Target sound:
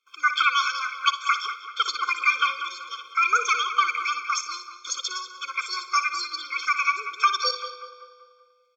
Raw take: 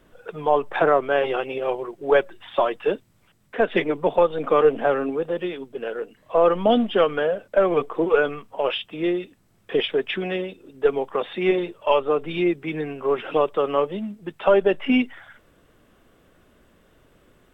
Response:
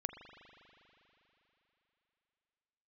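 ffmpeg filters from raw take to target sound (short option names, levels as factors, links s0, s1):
-filter_complex "[0:a]lowpass=f=2900:p=1,agate=range=0.112:threshold=0.00251:ratio=16:detection=peak,highpass=850,asplit=2[s0][s1];[s1]adelay=384,lowpass=f=1100:p=1,volume=0.355,asplit=2[s2][s3];[s3]adelay=384,lowpass=f=1100:p=1,volume=0.53,asplit=2[s4][s5];[s5]adelay=384,lowpass=f=1100:p=1,volume=0.53,asplit=2[s6][s7];[s7]adelay=384,lowpass=f=1100:p=1,volume=0.53,asplit=2[s8][s9];[s9]adelay=384,lowpass=f=1100:p=1,volume=0.53,asplit=2[s10][s11];[s11]adelay=384,lowpass=f=1100:p=1,volume=0.53[s12];[s0][s2][s4][s6][s8][s10][s12]amix=inputs=7:normalize=0,asplit=2[s13][s14];[1:a]atrim=start_sample=2205,adelay=117[s15];[s14][s15]afir=irnorm=-1:irlink=0,volume=0.335[s16];[s13][s16]amix=inputs=2:normalize=0,asetrate=88200,aresample=44100,afftfilt=real='re*eq(mod(floor(b*sr/1024/520),2),0)':imag='im*eq(mod(floor(b*sr/1024/520),2),0)':win_size=1024:overlap=0.75,volume=2.11"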